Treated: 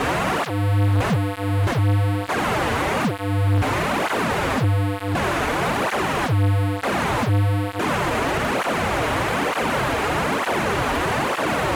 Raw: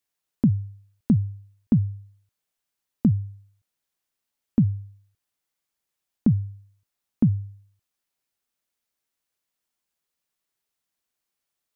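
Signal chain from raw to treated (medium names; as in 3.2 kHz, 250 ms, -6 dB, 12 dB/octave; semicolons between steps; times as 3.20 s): one-bit delta coder 16 kbps, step -26 dBFS; low-pass 1.1 kHz 12 dB/octave; fuzz box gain 42 dB, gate -50 dBFS; cancelling through-zero flanger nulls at 1.1 Hz, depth 6.1 ms; trim -3 dB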